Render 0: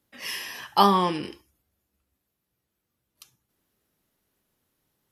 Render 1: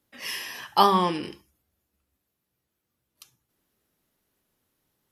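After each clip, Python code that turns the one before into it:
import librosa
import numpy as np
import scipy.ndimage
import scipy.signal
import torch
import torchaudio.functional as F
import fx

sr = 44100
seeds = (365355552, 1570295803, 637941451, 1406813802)

y = fx.hum_notches(x, sr, base_hz=50, count=4)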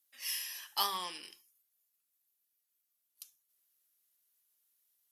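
y = fx.cheby_harmonics(x, sr, harmonics=(6, 7), levels_db=(-32, -44), full_scale_db=-5.0)
y = np.diff(y, prepend=0.0)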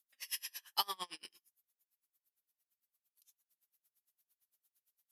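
y = x * 10.0 ** (-33 * (0.5 - 0.5 * np.cos(2.0 * np.pi * 8.8 * np.arange(len(x)) / sr)) / 20.0)
y = y * 10.0 ** (2.0 / 20.0)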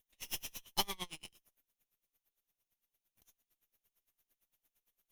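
y = fx.lower_of_two(x, sr, delay_ms=0.32)
y = y * 10.0 ** (1.5 / 20.0)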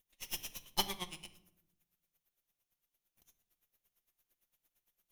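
y = fx.room_shoebox(x, sr, seeds[0], volume_m3=2200.0, walls='furnished', distance_m=0.91)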